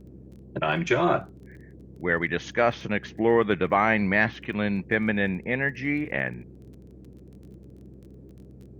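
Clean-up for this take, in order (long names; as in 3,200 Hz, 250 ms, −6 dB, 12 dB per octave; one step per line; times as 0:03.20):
click removal
hum removal 64.5 Hz, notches 3
noise reduction from a noise print 22 dB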